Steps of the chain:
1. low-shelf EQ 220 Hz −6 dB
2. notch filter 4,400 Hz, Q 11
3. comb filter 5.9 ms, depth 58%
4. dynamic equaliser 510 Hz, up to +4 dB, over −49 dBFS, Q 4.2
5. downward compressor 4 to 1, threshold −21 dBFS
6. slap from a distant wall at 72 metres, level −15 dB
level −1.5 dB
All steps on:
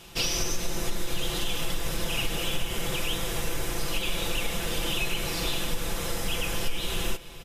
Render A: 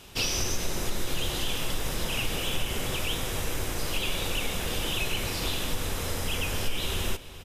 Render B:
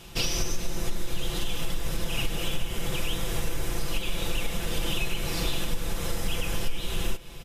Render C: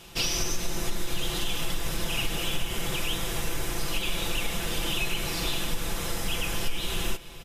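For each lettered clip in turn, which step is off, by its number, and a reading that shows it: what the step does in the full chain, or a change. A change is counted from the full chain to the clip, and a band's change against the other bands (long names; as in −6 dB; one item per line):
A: 3, 125 Hz band +2.0 dB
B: 1, 125 Hz band +4.5 dB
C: 4, 500 Hz band −2.0 dB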